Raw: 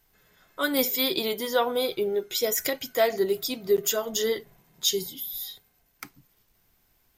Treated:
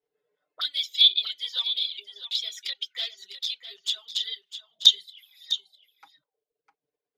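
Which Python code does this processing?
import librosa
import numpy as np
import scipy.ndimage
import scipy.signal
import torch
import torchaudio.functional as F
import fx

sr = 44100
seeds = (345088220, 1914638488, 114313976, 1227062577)

p1 = fx.auto_wah(x, sr, base_hz=440.0, top_hz=3500.0, q=6.3, full_db=-29.5, direction='up')
p2 = fx.peak_eq(p1, sr, hz=3900.0, db=13.5, octaves=2.8)
p3 = fx.level_steps(p2, sr, step_db=17)
p4 = p2 + (p3 * librosa.db_to_amplitude(-2.0))
p5 = fx.dereverb_blind(p4, sr, rt60_s=0.97)
p6 = fx.env_flanger(p5, sr, rest_ms=6.8, full_db=-15.0)
p7 = p6 + fx.echo_single(p6, sr, ms=654, db=-11.5, dry=0)
y = p7 * librosa.db_to_amplitude(-2.0)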